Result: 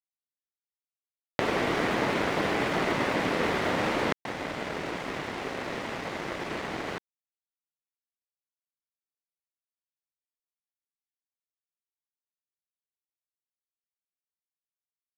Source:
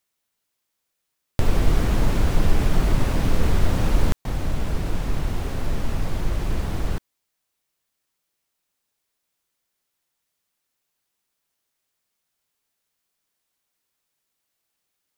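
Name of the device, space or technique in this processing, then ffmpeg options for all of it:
pocket radio on a weak battery: -af "highpass=330,lowpass=3600,aeval=exprs='sgn(val(0))*max(abs(val(0))-0.0075,0)':c=same,equalizer=f=2000:t=o:w=0.33:g=5,volume=1.88"

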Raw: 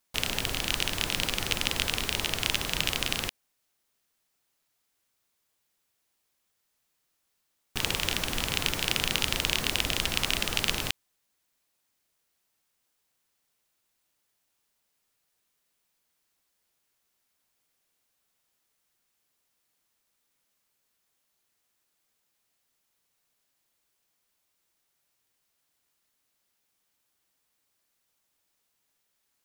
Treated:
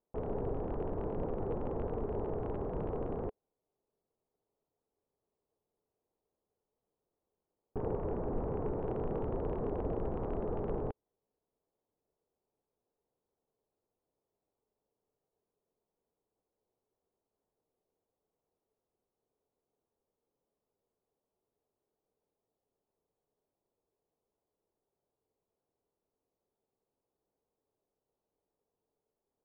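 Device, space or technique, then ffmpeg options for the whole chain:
under water: -filter_complex "[0:a]lowpass=f=880:w=0.5412,lowpass=f=880:w=1.3066,equalizer=f=430:t=o:w=0.51:g=10,asettb=1/sr,asplit=3[s0][s1][s2];[s0]atrim=end=7.794[s3];[s1]atrim=start=7.79:end=8.8,asetpts=PTS-STARTPTS,afade=t=in:d=0.004:c=qsin,afade=t=out:st=1.006:d=0.004:c=qsin,lowpass=f=2900:w=0.5412,lowpass=f=2900:w=1.3066[s4];[s2]atrim=start=8.796[s5];[s3][s4]acrossfade=d=0.004:c1=hsin:c2=qsin[s6];[s6][s5]acrossfade=d=0.004:c1=qsin:c2=hsin,volume=0.841"

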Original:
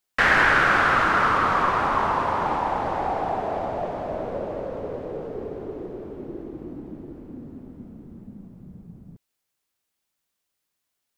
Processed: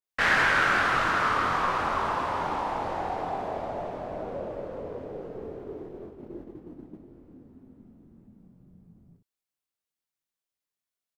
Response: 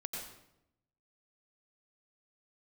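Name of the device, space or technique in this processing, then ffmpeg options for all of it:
slapback doubling: -filter_complex "[0:a]asplit=3[s0][s1][s2];[s1]adelay=23,volume=0.531[s3];[s2]adelay=61,volume=0.398[s4];[s0][s3][s4]amix=inputs=3:normalize=0,agate=range=0.501:threshold=0.02:ratio=16:detection=peak,adynamicequalizer=threshold=0.0282:dfrequency=2400:dqfactor=0.7:tfrequency=2400:tqfactor=0.7:attack=5:release=100:ratio=0.375:range=2.5:mode=boostabove:tftype=highshelf,volume=0.447"

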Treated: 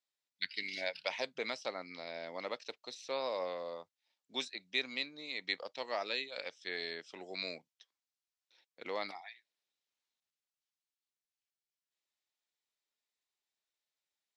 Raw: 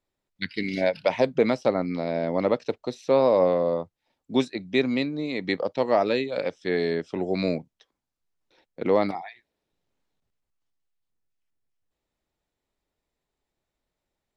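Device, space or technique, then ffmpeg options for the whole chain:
piezo pickup straight into a mixer: -af "lowpass=5200,aderivative,volume=1.58"

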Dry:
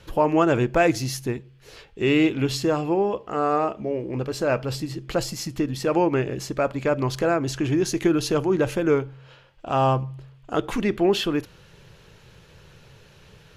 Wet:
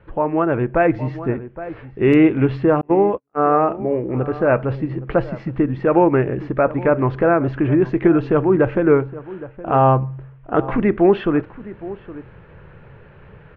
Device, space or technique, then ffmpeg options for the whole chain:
action camera in a waterproof case: -filter_complex "[0:a]asplit=2[s0][s1];[s1]adelay=816.3,volume=0.141,highshelf=f=4000:g=-18.4[s2];[s0][s2]amix=inputs=2:normalize=0,asettb=1/sr,asplit=3[s3][s4][s5];[s3]atrim=end=2.814[s6];[s4]atrim=start=2.81:end=3.57,asetpts=PTS-STARTPTS,afade=t=in:d=0.004:c=qsin,afade=t=out:st=0.756:d=0.004:c=qsin,agate=range=0.00316:threshold=0.0631:ratio=16:detection=peak[s7];[s5]atrim=start=3.566[s8];[s6][s7]acrossfade=d=0.004:c1=hsin:c2=qsin[s9];[s9][s8]acrossfade=d=0.004:c1=qsin:c2=hsin,lowpass=f=2000:w=0.5412,lowpass=f=2000:w=1.3066,dynaudnorm=f=310:g=5:m=2.37" -ar 44100 -c:a aac -b:a 96k

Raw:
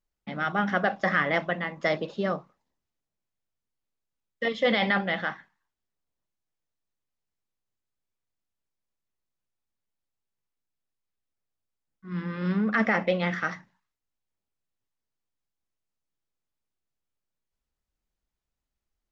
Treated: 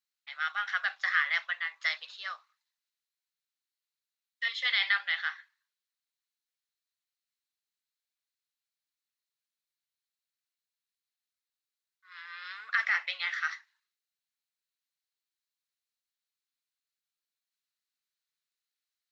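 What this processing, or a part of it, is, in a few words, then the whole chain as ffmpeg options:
headphones lying on a table: -af "highpass=f=1400:w=0.5412,highpass=f=1400:w=1.3066,equalizer=f=4100:t=o:w=0.28:g=8.5"

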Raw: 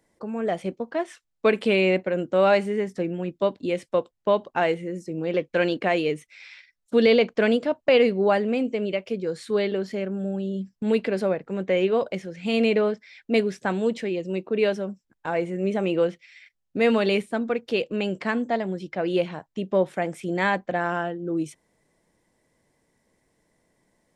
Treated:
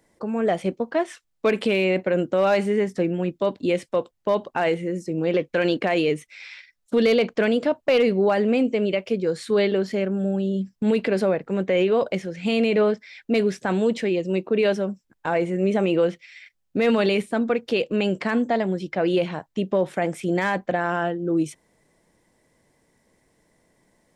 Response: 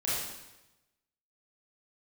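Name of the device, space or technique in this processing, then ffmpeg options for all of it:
clipper into limiter: -af "asoftclip=type=hard:threshold=0.282,alimiter=limit=0.15:level=0:latency=1:release=26,volume=1.68"

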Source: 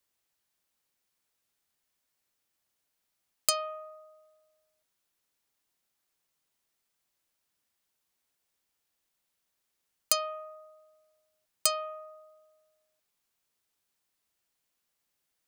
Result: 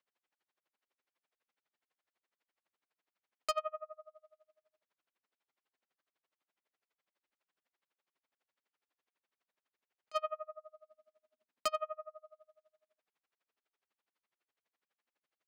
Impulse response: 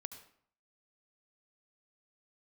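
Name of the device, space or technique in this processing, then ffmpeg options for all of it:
helicopter radio: -filter_complex "[0:a]highpass=300,lowpass=2600,aeval=exprs='val(0)*pow(10,-34*(0.5-0.5*cos(2*PI*12*n/s))/20)':c=same,asoftclip=type=hard:threshold=0.0299,asplit=3[s0][s1][s2];[s0]afade=t=out:st=10.41:d=0.02[s3];[s1]equalizer=f=240:t=o:w=0.52:g=13,afade=t=in:st=10.41:d=0.02,afade=t=out:st=11.71:d=0.02[s4];[s2]afade=t=in:st=11.71:d=0.02[s5];[s3][s4][s5]amix=inputs=3:normalize=0,volume=1.78"

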